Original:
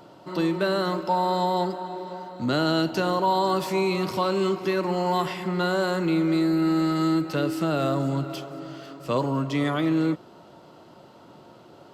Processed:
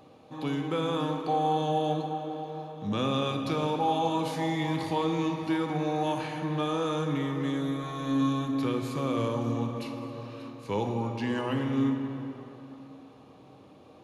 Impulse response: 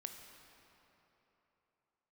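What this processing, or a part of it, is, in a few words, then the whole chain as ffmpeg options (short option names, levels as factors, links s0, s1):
slowed and reverbed: -filter_complex "[0:a]asetrate=37485,aresample=44100[s0];[1:a]atrim=start_sample=2205[s1];[s0][s1]afir=irnorm=-1:irlink=0,volume=0.891"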